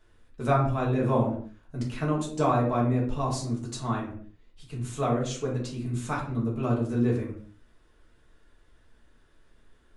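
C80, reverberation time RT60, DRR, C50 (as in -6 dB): 10.0 dB, not exponential, -4.0 dB, 6.0 dB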